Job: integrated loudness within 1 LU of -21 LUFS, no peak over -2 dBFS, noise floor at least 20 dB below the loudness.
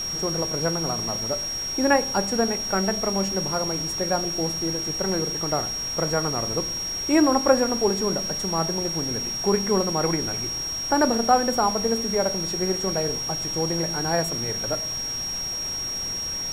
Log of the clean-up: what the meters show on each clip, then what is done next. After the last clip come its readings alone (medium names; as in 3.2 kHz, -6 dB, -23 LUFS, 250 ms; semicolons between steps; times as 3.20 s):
steady tone 5.6 kHz; tone level -27 dBFS; noise floor -30 dBFS; noise floor target -44 dBFS; loudness -23.5 LUFS; peak level -5.0 dBFS; loudness target -21.0 LUFS
-> band-stop 5.6 kHz, Q 30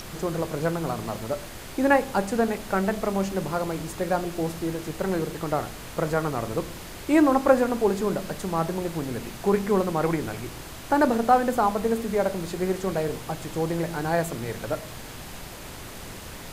steady tone not found; noise floor -40 dBFS; noise floor target -46 dBFS
-> noise print and reduce 6 dB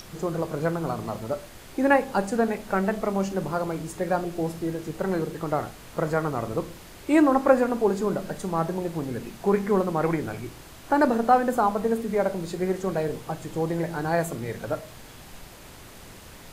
noise floor -46 dBFS; loudness -26.0 LUFS; peak level -5.5 dBFS; loudness target -21.0 LUFS
-> trim +5 dB; peak limiter -2 dBFS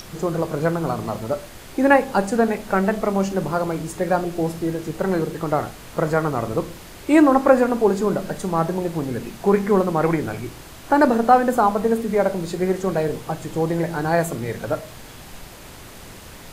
loudness -21.0 LUFS; peak level -2.0 dBFS; noise floor -41 dBFS